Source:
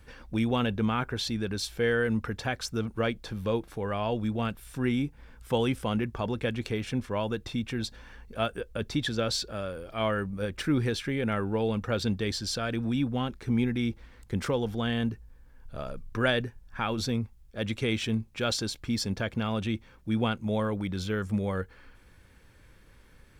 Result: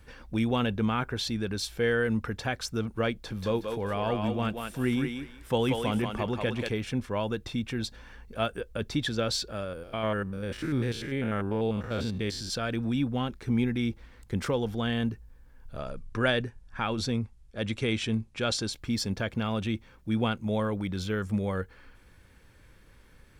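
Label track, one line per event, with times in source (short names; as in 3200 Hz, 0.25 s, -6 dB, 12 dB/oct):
3.120000	6.690000	thinning echo 0.184 s, feedback 25%, level -3 dB
9.640000	12.530000	stepped spectrum every 0.1 s
15.780000	18.730000	steep low-pass 11000 Hz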